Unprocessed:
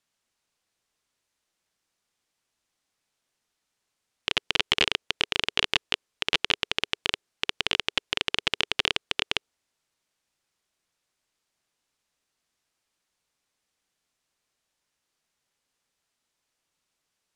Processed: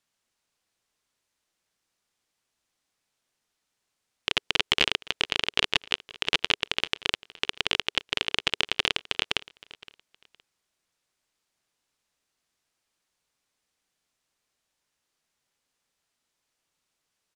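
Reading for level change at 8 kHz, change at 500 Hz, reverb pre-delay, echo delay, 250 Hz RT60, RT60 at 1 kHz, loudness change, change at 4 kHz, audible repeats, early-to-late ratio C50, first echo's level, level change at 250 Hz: 0.0 dB, 0.0 dB, no reverb audible, 516 ms, no reverb audible, no reverb audible, 0.0 dB, 0.0 dB, 2, no reverb audible, −21.0 dB, 0.0 dB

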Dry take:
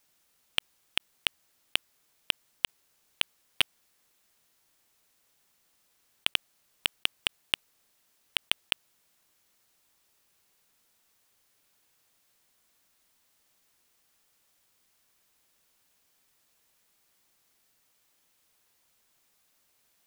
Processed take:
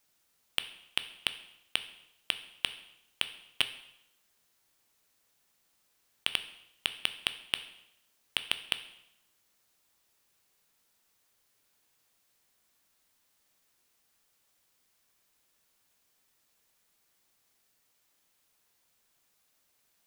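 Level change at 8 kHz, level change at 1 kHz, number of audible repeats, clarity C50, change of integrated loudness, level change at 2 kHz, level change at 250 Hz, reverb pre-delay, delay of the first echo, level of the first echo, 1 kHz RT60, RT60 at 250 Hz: −2.5 dB, −2.5 dB, no echo audible, 13.0 dB, −3.0 dB, −2.5 dB, −2.5 dB, 6 ms, no echo audible, no echo audible, 0.80 s, 0.80 s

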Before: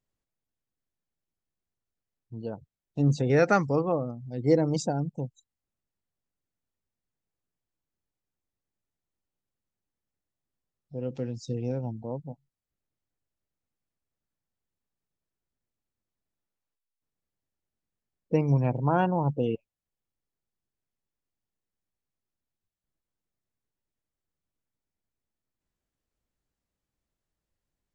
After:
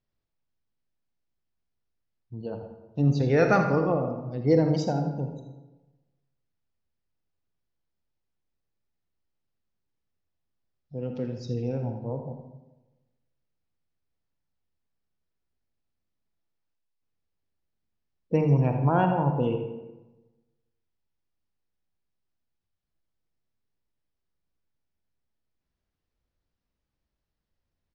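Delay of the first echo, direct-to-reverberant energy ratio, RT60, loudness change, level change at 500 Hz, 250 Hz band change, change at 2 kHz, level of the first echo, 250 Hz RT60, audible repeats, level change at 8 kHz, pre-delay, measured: 81 ms, 4.5 dB, 1.1 s, +1.5 dB, +1.5 dB, +2.0 dB, +1.0 dB, −11.0 dB, 1.2 s, 1, can't be measured, 38 ms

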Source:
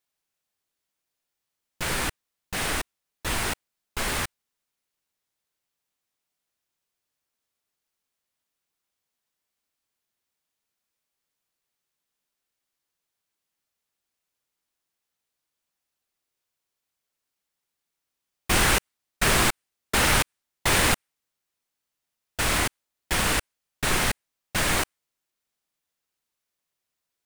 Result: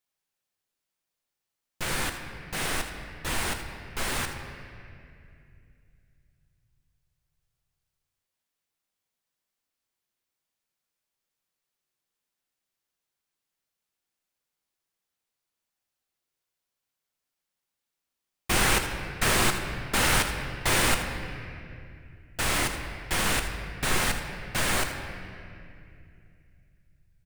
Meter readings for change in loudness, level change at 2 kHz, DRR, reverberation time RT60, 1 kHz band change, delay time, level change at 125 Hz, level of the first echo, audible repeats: −2.5 dB, −1.5 dB, 5.0 dB, 2.5 s, −2.0 dB, 80 ms, −1.0 dB, −13.0 dB, 1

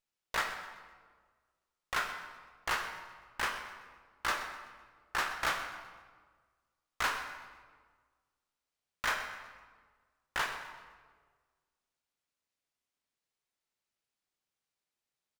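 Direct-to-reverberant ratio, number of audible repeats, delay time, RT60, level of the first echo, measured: 4.5 dB, 1, 127 ms, 1.6 s, −15.5 dB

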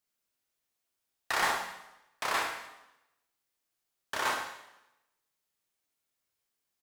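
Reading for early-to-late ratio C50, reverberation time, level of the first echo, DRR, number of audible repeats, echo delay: 3.5 dB, 0.90 s, −7.5 dB, 0.5 dB, 1, 71 ms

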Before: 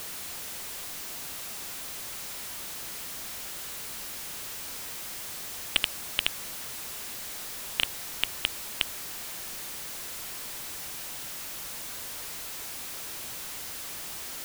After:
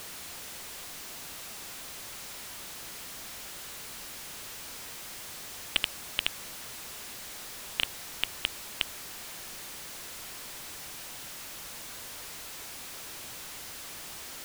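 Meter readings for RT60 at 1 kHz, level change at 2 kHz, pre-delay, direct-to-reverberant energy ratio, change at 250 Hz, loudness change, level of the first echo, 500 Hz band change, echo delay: no reverb audible, −2.0 dB, no reverb audible, no reverb audible, −2.0 dB, −3.5 dB, no echo audible, −2.0 dB, no echo audible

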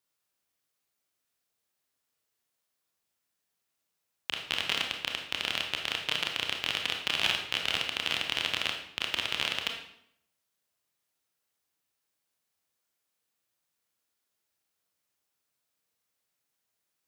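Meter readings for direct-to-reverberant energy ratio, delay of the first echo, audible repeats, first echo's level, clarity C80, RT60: 2.0 dB, no echo audible, no echo audible, no echo audible, 8.5 dB, 0.70 s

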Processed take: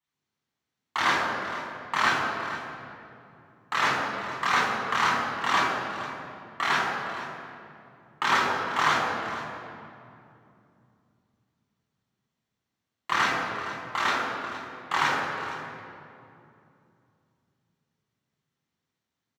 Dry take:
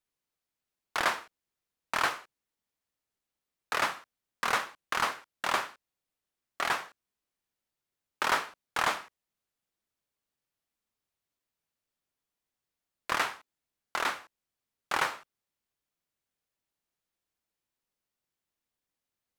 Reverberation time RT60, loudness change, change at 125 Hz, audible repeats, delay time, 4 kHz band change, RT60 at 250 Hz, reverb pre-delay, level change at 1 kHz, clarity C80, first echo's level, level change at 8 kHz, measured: 2.7 s, +4.5 dB, +12.5 dB, 2, 464 ms, +5.5 dB, 4.1 s, 3 ms, +7.0 dB, 1.5 dB, −13.5 dB, +1.5 dB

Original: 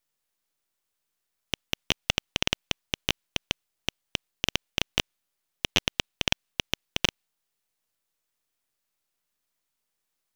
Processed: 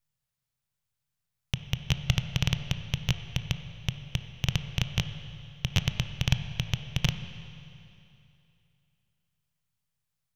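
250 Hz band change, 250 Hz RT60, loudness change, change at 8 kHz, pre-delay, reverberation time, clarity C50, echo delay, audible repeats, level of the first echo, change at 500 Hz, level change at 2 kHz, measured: +3.0 dB, 2.7 s, −1.5 dB, −5.5 dB, 20 ms, 2.8 s, 9.5 dB, no echo audible, no echo audible, no echo audible, −7.5 dB, −5.0 dB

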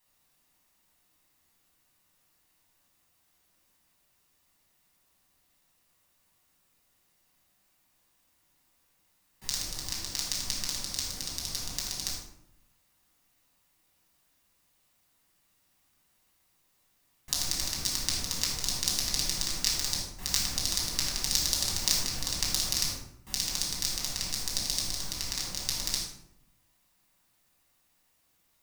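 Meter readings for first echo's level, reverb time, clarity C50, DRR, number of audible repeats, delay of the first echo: no echo audible, 0.75 s, 2.0 dB, −5.0 dB, no echo audible, no echo audible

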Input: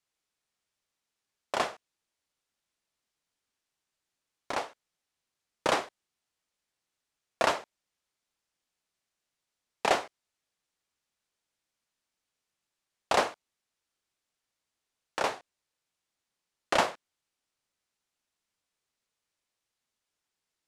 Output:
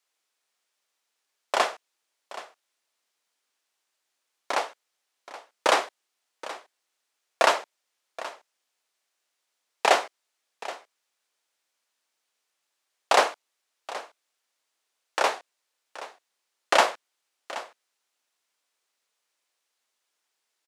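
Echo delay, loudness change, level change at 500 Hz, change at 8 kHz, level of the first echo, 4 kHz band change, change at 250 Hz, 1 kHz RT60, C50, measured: 775 ms, +5.5 dB, +5.5 dB, +6.5 dB, −16.0 dB, +6.5 dB, −0.5 dB, no reverb audible, no reverb audible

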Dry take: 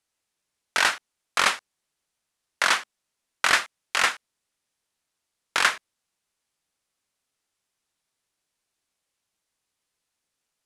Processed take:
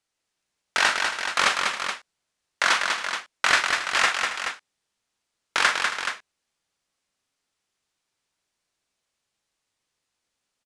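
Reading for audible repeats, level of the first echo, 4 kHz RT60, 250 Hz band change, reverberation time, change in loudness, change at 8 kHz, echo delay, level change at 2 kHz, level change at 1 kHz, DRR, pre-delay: 5, −8.5 dB, no reverb audible, +2.0 dB, no reverb audible, +0.5 dB, +0.5 dB, 40 ms, +2.5 dB, +2.5 dB, no reverb audible, no reverb audible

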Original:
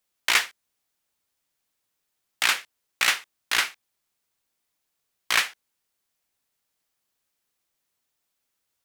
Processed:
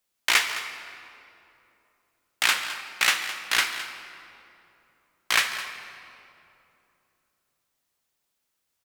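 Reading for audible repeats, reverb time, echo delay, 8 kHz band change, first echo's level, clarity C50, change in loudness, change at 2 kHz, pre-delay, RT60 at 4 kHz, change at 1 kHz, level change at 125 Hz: 1, 2.9 s, 212 ms, +0.5 dB, −14.5 dB, 7.5 dB, −0.5 dB, +1.0 dB, 22 ms, 1.7 s, +1.0 dB, can't be measured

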